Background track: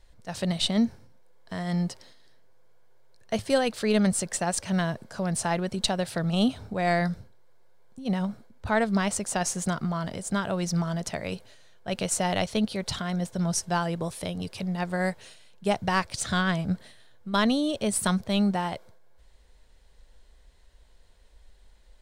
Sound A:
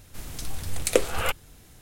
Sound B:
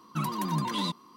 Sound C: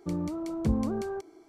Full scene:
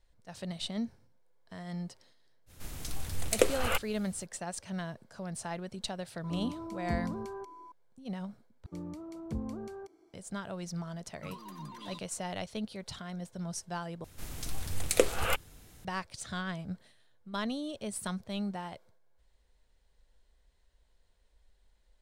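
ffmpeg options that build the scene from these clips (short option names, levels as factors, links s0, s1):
-filter_complex "[1:a]asplit=2[s0][s1];[3:a]asplit=2[s2][s3];[0:a]volume=0.266[s4];[s2]aeval=exprs='val(0)+0.01*sin(2*PI*1000*n/s)':c=same[s5];[s4]asplit=3[s6][s7][s8];[s6]atrim=end=8.664[s9];[s3]atrim=end=1.48,asetpts=PTS-STARTPTS,volume=0.316[s10];[s7]atrim=start=10.136:end=14.044[s11];[s1]atrim=end=1.81,asetpts=PTS-STARTPTS,volume=0.668[s12];[s8]atrim=start=15.846[s13];[s0]atrim=end=1.81,asetpts=PTS-STARTPTS,volume=0.631,afade=t=in:d=0.05,afade=t=out:st=1.76:d=0.05,adelay=2460[s14];[s5]atrim=end=1.48,asetpts=PTS-STARTPTS,volume=0.398,afade=t=in:d=0.004:c=hsin,afade=t=out:st=1.476:d=0.004:c=hsin,adelay=6240[s15];[2:a]atrim=end=1.16,asetpts=PTS-STARTPTS,volume=0.168,afade=t=in:d=0.004:c=hsin,afade=t=out:st=1.156:d=0.004:c=hsin,adelay=11070[s16];[s9][s10]acrossfade=d=0.004:c1=hsin:c2=hsin[s17];[s17][s11]acrossfade=d=0.004:c1=hsin:c2=hsin[s18];[s18][s12]acrossfade=d=0.004:c1=hsin:c2=hsin[s19];[s19][s13]acrossfade=d=0.004:c1=hsin:c2=hsin[s20];[s20][s14][s15][s16]amix=inputs=4:normalize=0"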